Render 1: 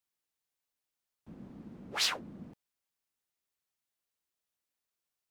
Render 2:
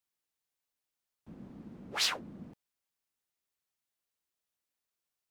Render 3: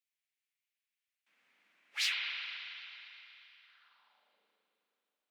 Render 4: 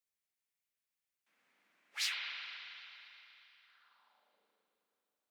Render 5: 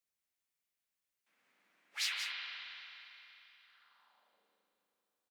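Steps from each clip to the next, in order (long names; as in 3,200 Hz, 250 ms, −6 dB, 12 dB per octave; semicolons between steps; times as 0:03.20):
no processing that can be heard
spring reverb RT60 3.4 s, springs 38/53 ms, chirp 75 ms, DRR −3 dB; high-pass filter sweep 2,200 Hz → 450 Hz, 0:03.60–0:04.44; level −6.5 dB
parametric band 2,700 Hz −6.5 dB 1.4 octaves; level +1 dB
single-tap delay 180 ms −7.5 dB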